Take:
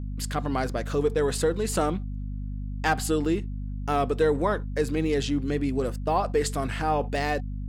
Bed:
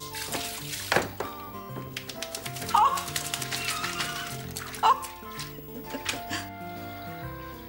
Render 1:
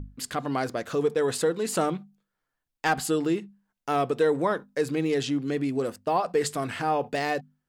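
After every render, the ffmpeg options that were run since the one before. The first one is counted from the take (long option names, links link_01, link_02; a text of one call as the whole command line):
ffmpeg -i in.wav -af "bandreject=frequency=50:width_type=h:width=6,bandreject=frequency=100:width_type=h:width=6,bandreject=frequency=150:width_type=h:width=6,bandreject=frequency=200:width_type=h:width=6,bandreject=frequency=250:width_type=h:width=6" out.wav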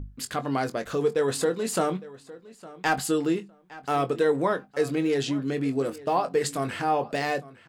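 ffmpeg -i in.wav -filter_complex "[0:a]asplit=2[link_01][link_02];[link_02]adelay=22,volume=-10dB[link_03];[link_01][link_03]amix=inputs=2:normalize=0,asplit=2[link_04][link_05];[link_05]adelay=859,lowpass=frequency=4700:poles=1,volume=-19dB,asplit=2[link_06][link_07];[link_07]adelay=859,lowpass=frequency=4700:poles=1,volume=0.18[link_08];[link_04][link_06][link_08]amix=inputs=3:normalize=0" out.wav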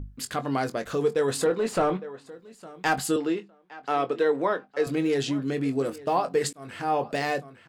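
ffmpeg -i in.wav -filter_complex "[0:a]asettb=1/sr,asplit=3[link_01][link_02][link_03];[link_01]atrim=end=1.464[link_04];[link_02]atrim=start=1.46:end=2.26,asetpts=PTS-STARTPTS,afade=type=in:duration=0.004:curve=qsin,afade=type=out:start_time=0.796:duration=0.004:curve=qsin,asplit=2[link_05][link_06];[link_06]highpass=frequency=720:poles=1,volume=16dB,asoftclip=type=tanh:threshold=-12.5dB[link_07];[link_05][link_07]amix=inputs=2:normalize=0,lowpass=frequency=1000:poles=1,volume=-6dB[link_08];[link_03]atrim=start=2.256[link_09];[link_04][link_08]acrossfade=duration=0.004:curve1=hsin:curve2=qsin[link_10];[link_10][link_09]acrossfade=duration=0.004:curve1=qsin:curve2=hsin,asettb=1/sr,asplit=3[link_11][link_12][link_13];[link_11]atrim=end=3.164[link_14];[link_12]atrim=start=3.16:end=4.87,asetpts=PTS-STARTPTS,afade=type=in:duration=0.004:curve=qsin,afade=type=out:start_time=1.706:duration=0.004:curve=qsin,acrossover=split=240 5400:gain=0.224 1 0.2[link_15][link_16][link_17];[link_15][link_16][link_17]amix=inputs=3:normalize=0[link_18];[link_13]atrim=start=4.866[link_19];[link_14][link_18]acrossfade=duration=0.004:curve1=hsin:curve2=qsin[link_20];[link_20][link_19]acrossfade=duration=0.004:curve1=qsin:curve2=hsin,asplit=2[link_21][link_22];[link_21]atrim=end=6.53,asetpts=PTS-STARTPTS,afade=type=out:start_time=6.526:duration=0.004:curve=hsin[link_23];[link_22]atrim=start=6.53,asetpts=PTS-STARTPTS,afade=type=in:duration=0.44[link_24];[link_23][link_24]concat=n=2:v=0:a=1" out.wav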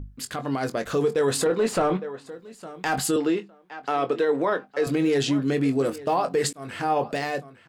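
ffmpeg -i in.wav -af "alimiter=limit=-19dB:level=0:latency=1:release=28,dynaudnorm=framelen=120:gausssize=11:maxgain=4.5dB" out.wav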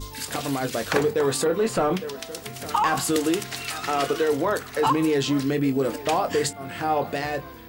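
ffmpeg -i in.wav -i bed.wav -filter_complex "[1:a]volume=-1.5dB[link_01];[0:a][link_01]amix=inputs=2:normalize=0" out.wav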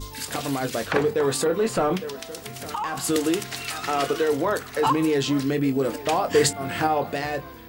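ffmpeg -i in.wav -filter_complex "[0:a]asettb=1/sr,asplit=3[link_01][link_02][link_03];[link_01]atrim=end=0.864[link_04];[link_02]atrim=start=0.86:end=1.31,asetpts=PTS-STARTPTS,afade=type=in:duration=0.004:curve=qsin,afade=type=out:start_time=0.446:duration=0.004:curve=qsin,acrossover=split=4000[link_05][link_06];[link_06]acompressor=threshold=-44dB:ratio=4:attack=1:release=60[link_07];[link_05][link_07]amix=inputs=2:normalize=0[link_08];[link_03]atrim=start=1.306[link_09];[link_04][link_08]acrossfade=duration=0.004:curve1=hsin:curve2=qsin[link_10];[link_10][link_09]acrossfade=duration=0.004:curve1=qsin:curve2=hsin,asettb=1/sr,asplit=3[link_11][link_12][link_13];[link_11]atrim=end=2.184[link_14];[link_12]atrim=start=2.18:end=3.04,asetpts=PTS-STARTPTS,afade=type=in:duration=0.004:curve=qsin,afade=type=out:start_time=0.856:duration=0.004:curve=qsin,acompressor=threshold=-30dB:ratio=2:attack=3.2:release=140:knee=1:detection=peak[link_15];[link_13]atrim=start=3.036[link_16];[link_14][link_15]acrossfade=duration=0.004:curve1=hsin:curve2=qsin[link_17];[link_17][link_16]acrossfade=duration=0.004:curve1=qsin:curve2=hsin,asplit=3[link_18][link_19][link_20];[link_18]afade=type=out:start_time=6.34:duration=0.02[link_21];[link_19]acontrast=35,afade=type=in:start_time=6.34:duration=0.02,afade=type=out:start_time=6.86:duration=0.02[link_22];[link_20]afade=type=in:start_time=6.86:duration=0.02[link_23];[link_21][link_22][link_23]amix=inputs=3:normalize=0" out.wav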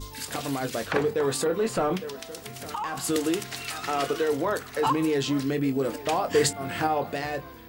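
ffmpeg -i in.wav -af "volume=-3dB" out.wav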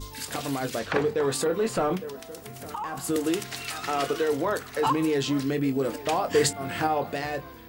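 ffmpeg -i in.wav -filter_complex "[0:a]asettb=1/sr,asplit=3[link_01][link_02][link_03];[link_01]atrim=end=0.794[link_04];[link_02]atrim=start=0.79:end=1.32,asetpts=PTS-STARTPTS,afade=type=in:duration=0.004:curve=qsin,afade=type=out:start_time=0.526:duration=0.004:curve=qsin,acrossover=split=7300[link_05][link_06];[link_06]acompressor=threshold=-57dB:ratio=4:attack=1:release=60[link_07];[link_05][link_07]amix=inputs=2:normalize=0[link_08];[link_03]atrim=start=1.316[link_09];[link_04][link_08]acrossfade=duration=0.004:curve1=hsin:curve2=qsin[link_10];[link_10][link_09]acrossfade=duration=0.004:curve1=qsin:curve2=hsin,asettb=1/sr,asplit=3[link_11][link_12][link_13];[link_11]atrim=end=1.954[link_14];[link_12]atrim=start=1.95:end=3.27,asetpts=PTS-STARTPTS,afade=type=in:duration=0.004:curve=qsin,afade=type=out:start_time=1.316:duration=0.004:curve=qsin,equalizer=frequency=3800:width_type=o:width=2.5:gain=-6.5[link_15];[link_13]atrim=start=3.266[link_16];[link_14][link_15]acrossfade=duration=0.004:curve1=hsin:curve2=qsin[link_17];[link_17][link_16]acrossfade=duration=0.004:curve1=qsin:curve2=hsin" out.wav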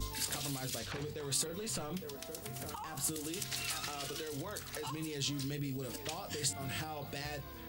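ffmpeg -i in.wav -filter_complex "[0:a]alimiter=limit=-21.5dB:level=0:latency=1:release=36,acrossover=split=140|3000[link_01][link_02][link_03];[link_02]acompressor=threshold=-45dB:ratio=4[link_04];[link_01][link_04][link_03]amix=inputs=3:normalize=0" out.wav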